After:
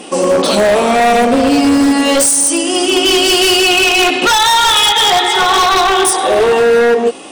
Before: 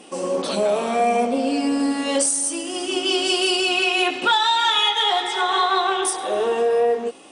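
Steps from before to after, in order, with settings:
in parallel at +0.5 dB: brickwall limiter −17.5 dBFS, peak gain reduction 9 dB
on the sum: wave folding −12.5 dBFS
level +7.5 dB

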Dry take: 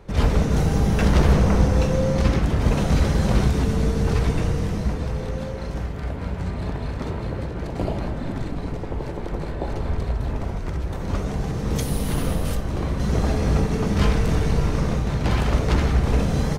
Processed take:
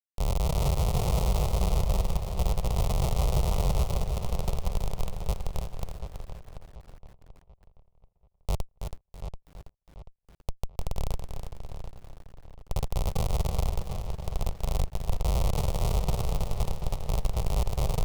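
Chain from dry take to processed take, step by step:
notch filter 470 Hz, Q 12
all-pass phaser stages 8, 0.43 Hz, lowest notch 100–1,300 Hz
thirty-one-band graphic EQ 160 Hz +6 dB, 400 Hz +6 dB, 800 Hz −9 dB, 10,000 Hz +10 dB
comparator with hysteresis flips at −16 dBFS
low-shelf EQ 88 Hz −3.5 dB
phaser with its sweep stopped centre 740 Hz, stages 4
feedback echo with a low-pass in the loop 676 ms, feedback 37%, low-pass 3,900 Hz, level −9 dB
wrong playback speed 48 kHz file played as 44.1 kHz
feedback echo at a low word length 327 ms, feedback 35%, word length 8 bits, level −7 dB

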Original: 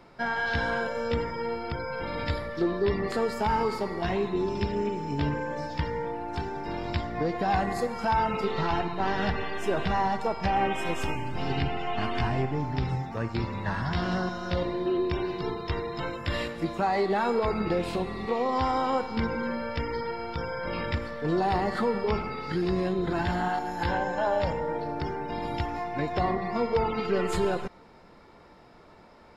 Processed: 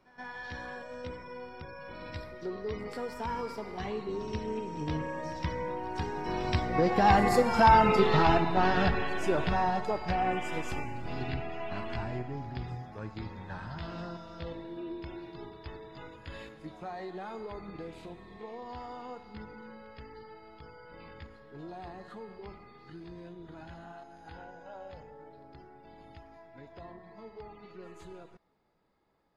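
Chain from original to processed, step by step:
source passing by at 0:07.71, 21 m/s, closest 18 metres
echo ahead of the sound 125 ms −18 dB
level +5.5 dB

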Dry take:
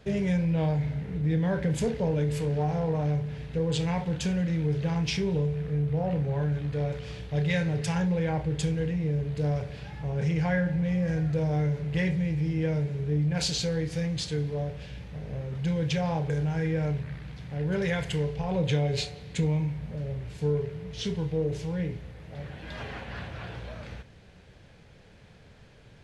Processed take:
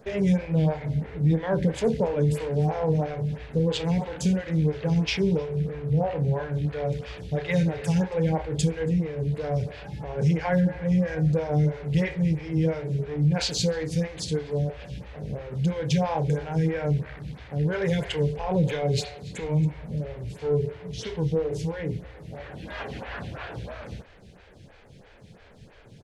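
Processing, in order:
in parallel at −5 dB: gain into a clipping stage and back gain 22.5 dB
on the sum: single-tap delay 276 ms −23.5 dB
phaser with staggered stages 3 Hz
level +2.5 dB

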